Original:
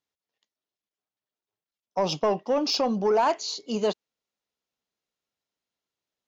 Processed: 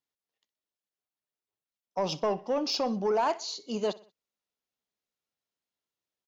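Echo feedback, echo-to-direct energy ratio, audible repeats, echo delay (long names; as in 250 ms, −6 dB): 44%, −19.0 dB, 3, 62 ms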